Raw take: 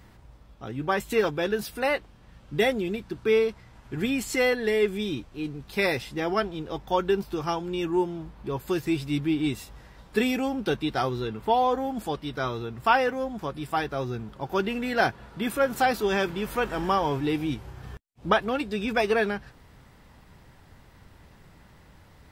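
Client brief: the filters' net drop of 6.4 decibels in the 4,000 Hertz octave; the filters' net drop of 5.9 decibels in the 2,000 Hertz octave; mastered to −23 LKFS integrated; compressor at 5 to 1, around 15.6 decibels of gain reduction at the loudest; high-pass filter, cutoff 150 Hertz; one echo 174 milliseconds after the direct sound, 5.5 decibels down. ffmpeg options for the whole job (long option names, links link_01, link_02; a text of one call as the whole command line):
ffmpeg -i in.wav -af "highpass=150,equalizer=frequency=2000:width_type=o:gain=-6.5,equalizer=frequency=4000:width_type=o:gain=-6,acompressor=threshold=-37dB:ratio=5,aecho=1:1:174:0.531,volume=16.5dB" out.wav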